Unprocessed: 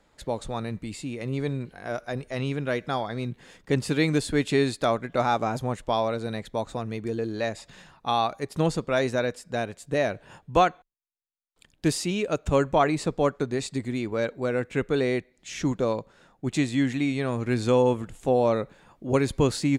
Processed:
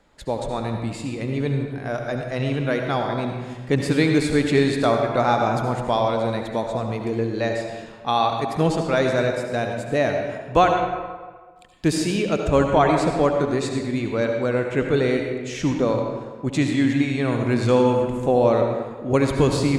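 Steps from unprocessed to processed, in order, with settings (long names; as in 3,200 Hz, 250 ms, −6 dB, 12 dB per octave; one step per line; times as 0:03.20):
high-shelf EQ 5,600 Hz −4.5 dB
on a send: convolution reverb RT60 1.5 s, pre-delay 66 ms, DRR 3 dB
on the sum: level +3.5 dB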